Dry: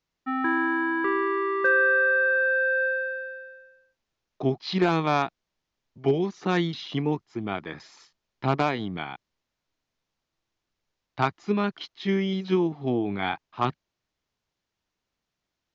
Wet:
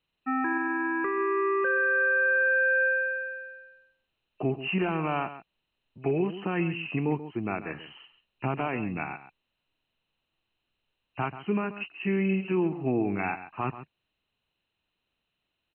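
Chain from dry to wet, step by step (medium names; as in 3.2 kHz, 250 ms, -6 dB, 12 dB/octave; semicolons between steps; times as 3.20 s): knee-point frequency compression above 2.4 kHz 4:1; peak limiter -18.5 dBFS, peak gain reduction 8.5 dB; delay 135 ms -13 dB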